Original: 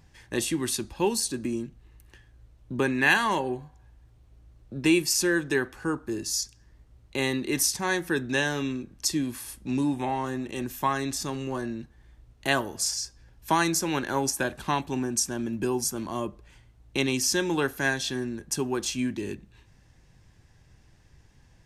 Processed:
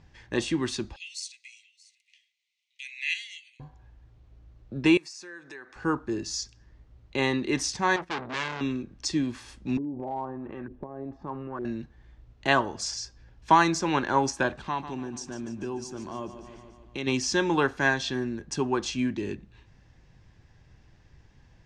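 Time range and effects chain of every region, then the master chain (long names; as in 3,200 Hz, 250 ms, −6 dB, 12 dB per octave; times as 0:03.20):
0:00.96–0:03.60: Chebyshev high-pass filter 2,000 Hz, order 8 + dynamic equaliser 3,800 Hz, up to −5 dB, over −45 dBFS, Q 1.7 + single-tap delay 629 ms −21 dB
0:04.97–0:05.76: downward compressor 5 to 1, threshold −36 dBFS + high-pass filter 920 Hz 6 dB per octave + parametric band 3,100 Hz −11 dB 0.3 octaves
0:07.96–0:08.61: noise gate −38 dBFS, range −14 dB + high-shelf EQ 9,200 Hz −10.5 dB + saturating transformer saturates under 4,000 Hz
0:09.77–0:11.65: downward compressor 10 to 1, threshold −34 dBFS + auto-filter low-pass saw up 1.1 Hz 370–1,600 Hz + hard clipping −27.5 dBFS
0:14.56–0:17.07: repeating echo 146 ms, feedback 59%, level −13 dB + downward compressor 1.5 to 1, threshold −44 dBFS
whole clip: Bessel low-pass filter 4,700 Hz, order 6; dynamic equaliser 1,000 Hz, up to +6 dB, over −41 dBFS, Q 1.8; level +1 dB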